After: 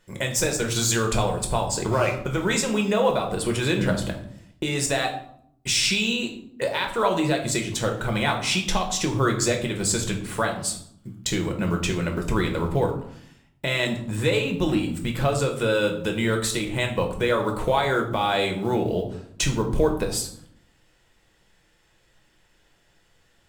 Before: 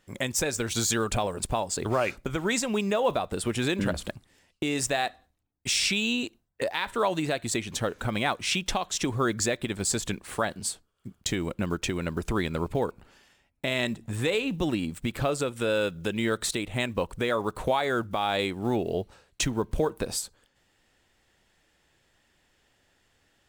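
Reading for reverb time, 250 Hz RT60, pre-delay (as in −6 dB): 0.65 s, 1.0 s, 5 ms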